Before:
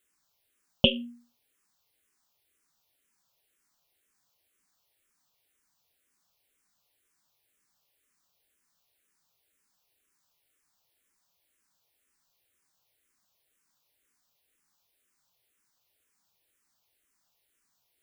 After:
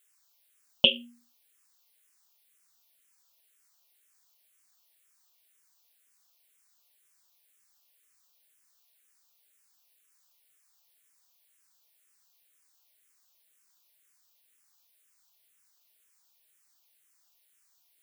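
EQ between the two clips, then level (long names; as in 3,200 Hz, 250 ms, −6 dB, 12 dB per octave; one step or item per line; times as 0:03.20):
spectral tilt +2 dB per octave
low-shelf EQ 290 Hz −7.5 dB
0.0 dB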